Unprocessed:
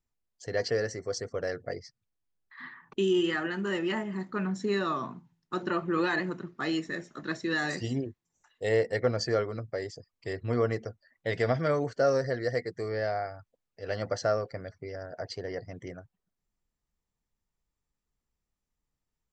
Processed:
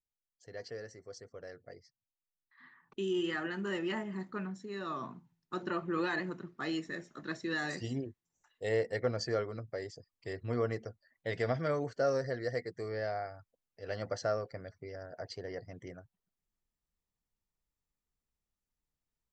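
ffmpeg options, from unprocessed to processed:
ffmpeg -i in.wav -af "volume=5dB,afade=type=in:start_time=2.63:duration=0.79:silence=0.316228,afade=type=out:start_time=4.26:duration=0.42:silence=0.298538,afade=type=in:start_time=4.68:duration=0.36:silence=0.316228" out.wav

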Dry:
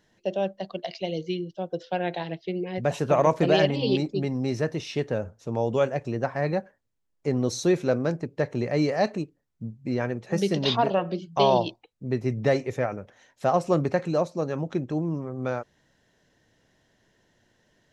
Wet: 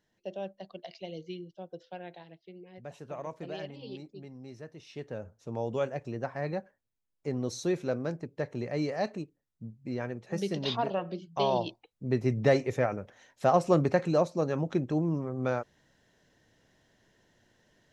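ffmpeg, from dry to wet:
ffmpeg -i in.wav -af "volume=7dB,afade=type=out:start_time=1.5:duration=0.78:silence=0.398107,afade=type=in:start_time=4.75:duration=0.75:silence=0.266073,afade=type=in:start_time=11.52:duration=0.65:silence=0.473151" out.wav

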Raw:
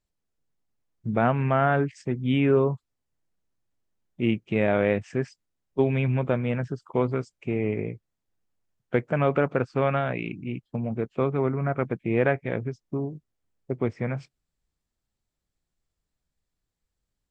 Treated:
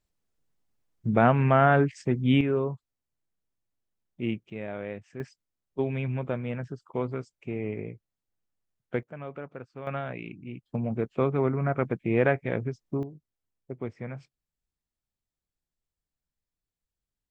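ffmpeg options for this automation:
ffmpeg -i in.wav -af "asetnsamples=nb_out_samples=441:pad=0,asendcmd='2.41 volume volume -6dB;4.5 volume volume -13.5dB;5.2 volume volume -6dB;9.03 volume volume -16.5dB;9.87 volume volume -7.5dB;10.66 volume volume -0.5dB;13.03 volume volume -8.5dB',volume=2dB" out.wav

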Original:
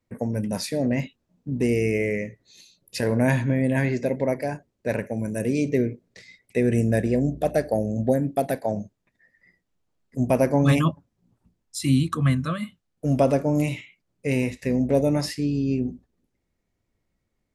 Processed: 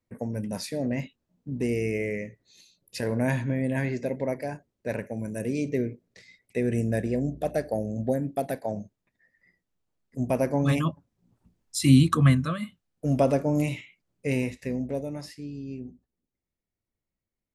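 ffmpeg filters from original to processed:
ffmpeg -i in.wav -af "volume=4dB,afade=type=in:start_time=10.9:duration=1.22:silence=0.354813,afade=type=out:start_time=12.12:duration=0.4:silence=0.473151,afade=type=out:start_time=14.28:duration=0.79:silence=0.298538" out.wav

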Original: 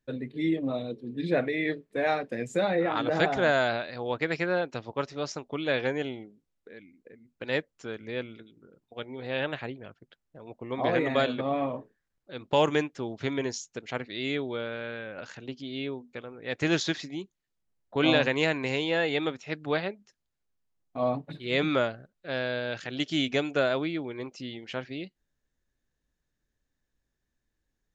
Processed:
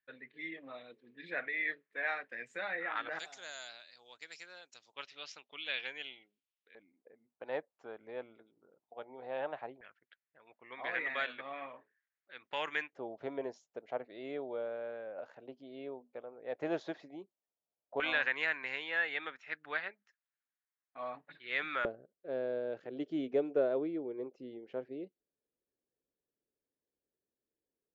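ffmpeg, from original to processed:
ffmpeg -i in.wav -af "asetnsamples=nb_out_samples=441:pad=0,asendcmd='3.19 bandpass f 6900;4.94 bandpass f 2900;6.75 bandpass f 770;9.81 bandpass f 1900;12.93 bandpass f 640;18 bandpass f 1700;21.85 bandpass f 440',bandpass=frequency=1800:width_type=q:width=2.4:csg=0" out.wav

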